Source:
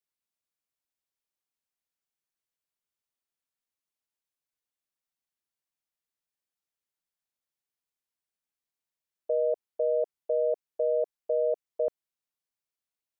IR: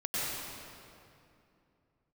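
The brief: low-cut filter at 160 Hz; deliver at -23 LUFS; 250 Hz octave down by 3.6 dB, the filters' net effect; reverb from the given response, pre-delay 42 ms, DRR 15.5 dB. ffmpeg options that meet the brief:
-filter_complex "[0:a]highpass=160,equalizer=f=250:t=o:g=-7.5,asplit=2[a][b];[1:a]atrim=start_sample=2205,adelay=42[c];[b][c]afir=irnorm=-1:irlink=0,volume=-23dB[d];[a][d]amix=inputs=2:normalize=0,volume=7.5dB"

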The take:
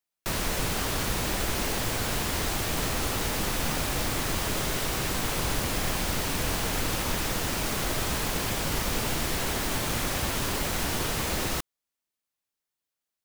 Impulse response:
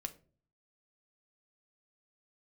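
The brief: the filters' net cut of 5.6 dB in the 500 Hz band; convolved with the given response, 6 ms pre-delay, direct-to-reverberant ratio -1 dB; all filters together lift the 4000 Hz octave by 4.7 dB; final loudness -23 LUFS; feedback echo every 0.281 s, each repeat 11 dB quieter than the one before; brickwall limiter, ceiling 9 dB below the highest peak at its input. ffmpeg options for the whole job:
-filter_complex "[0:a]equalizer=f=500:t=o:g=-7.5,equalizer=f=4k:t=o:g=6,alimiter=limit=-23.5dB:level=0:latency=1,aecho=1:1:281|562|843:0.282|0.0789|0.0221,asplit=2[a][b];[1:a]atrim=start_sample=2205,adelay=6[c];[b][c]afir=irnorm=-1:irlink=0,volume=3dB[d];[a][d]amix=inputs=2:normalize=0,volume=5dB"

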